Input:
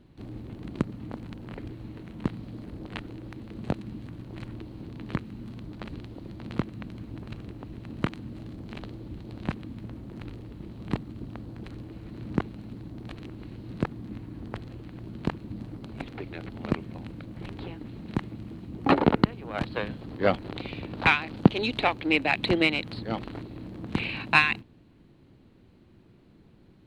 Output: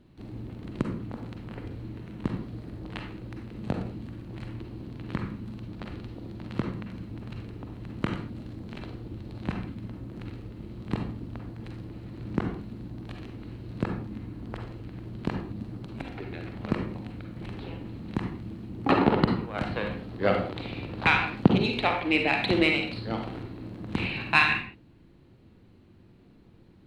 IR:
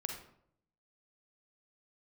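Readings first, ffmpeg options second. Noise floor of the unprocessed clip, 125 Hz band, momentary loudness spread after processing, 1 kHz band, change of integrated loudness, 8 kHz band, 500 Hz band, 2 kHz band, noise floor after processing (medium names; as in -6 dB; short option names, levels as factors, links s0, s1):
-56 dBFS, +1.0 dB, 17 LU, 0.0 dB, 0.0 dB, no reading, +0.5 dB, 0.0 dB, -55 dBFS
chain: -filter_complex "[1:a]atrim=start_sample=2205,afade=t=out:st=0.27:d=0.01,atrim=end_sample=12348[s0];[0:a][s0]afir=irnorm=-1:irlink=0"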